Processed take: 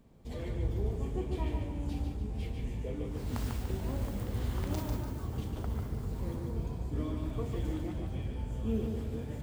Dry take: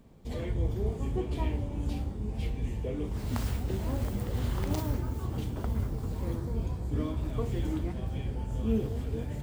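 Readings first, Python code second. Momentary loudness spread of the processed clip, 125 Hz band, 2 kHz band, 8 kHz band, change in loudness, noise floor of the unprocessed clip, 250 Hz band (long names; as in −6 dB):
4 LU, −3.5 dB, −3.0 dB, −3.0 dB, −3.0 dB, −38 dBFS, −3.0 dB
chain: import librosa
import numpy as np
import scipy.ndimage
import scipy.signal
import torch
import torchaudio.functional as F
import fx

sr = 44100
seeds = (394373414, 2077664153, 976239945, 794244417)

y = fx.echo_feedback(x, sr, ms=146, feedback_pct=42, wet_db=-5.0)
y = F.gain(torch.from_numpy(y), -4.5).numpy()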